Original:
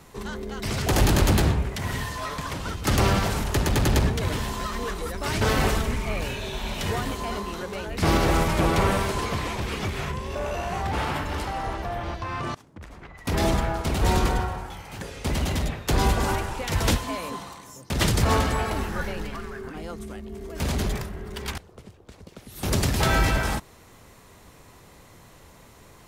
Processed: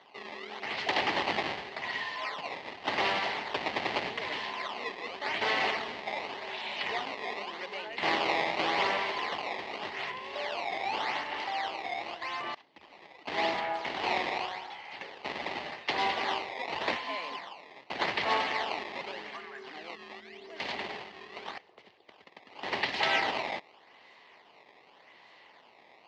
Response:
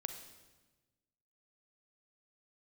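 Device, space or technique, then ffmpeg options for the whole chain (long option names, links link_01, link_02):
circuit-bent sampling toy: -af "acrusher=samples=17:mix=1:aa=0.000001:lfo=1:lforange=27.2:lforate=0.86,highpass=500,equalizer=frequency=500:width_type=q:width=4:gain=-3,equalizer=frequency=820:width_type=q:width=4:gain=4,equalizer=frequency=1400:width_type=q:width=4:gain=-7,equalizer=frequency=2000:width_type=q:width=4:gain=8,equalizer=frequency=2900:width_type=q:width=4:gain=5,equalizer=frequency=4400:width_type=q:width=4:gain=4,lowpass=frequency=4500:width=0.5412,lowpass=frequency=4500:width=1.3066,volume=-4dB"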